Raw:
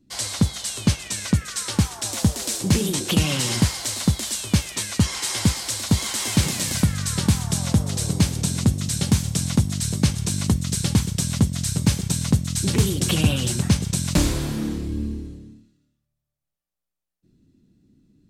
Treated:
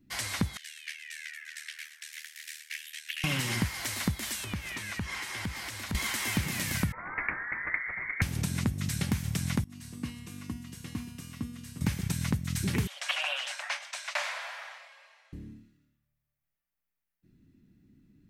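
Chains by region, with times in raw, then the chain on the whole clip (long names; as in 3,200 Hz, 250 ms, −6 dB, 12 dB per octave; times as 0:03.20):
0:00.57–0:03.24: Chebyshev high-pass filter 1,700 Hz, order 5 + spectral tilt −3 dB per octave + amplitude modulation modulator 77 Hz, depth 70%
0:04.44–0:05.95: downward compressor, threshold −29 dBFS + high-shelf EQ 5,200 Hz −6 dB
0:06.92–0:08.22: Butterworth high-pass 410 Hz + voice inversion scrambler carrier 2,600 Hz + highs frequency-modulated by the lows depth 0.17 ms
0:09.64–0:11.81: tuned comb filter 240 Hz, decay 1.2 s, mix 90% + hollow resonant body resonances 290/1,100/2,800 Hz, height 10 dB, ringing for 35 ms
0:12.87–0:15.33: Butterworth high-pass 570 Hz 96 dB per octave + high-frequency loss of the air 92 metres
whole clip: high-shelf EQ 8,000 Hz +6.5 dB; downward compressor, threshold −23 dBFS; octave-band graphic EQ 500/2,000/4,000/8,000 Hz −5/+8/−5/−9 dB; level −2 dB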